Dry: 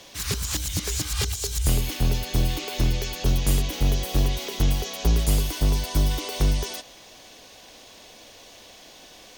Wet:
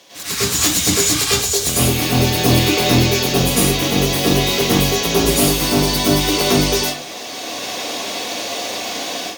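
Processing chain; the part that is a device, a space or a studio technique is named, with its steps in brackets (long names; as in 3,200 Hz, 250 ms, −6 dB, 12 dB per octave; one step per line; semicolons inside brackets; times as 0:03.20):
far laptop microphone (convolution reverb RT60 0.45 s, pre-delay 93 ms, DRR −9 dB; high-pass filter 190 Hz 12 dB per octave; automatic gain control gain up to 15 dB)
level −1 dB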